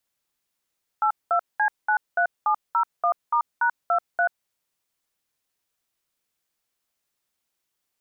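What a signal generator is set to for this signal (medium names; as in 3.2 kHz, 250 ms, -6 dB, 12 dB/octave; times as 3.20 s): DTMF "82C93701*#23", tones 86 ms, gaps 202 ms, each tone -20.5 dBFS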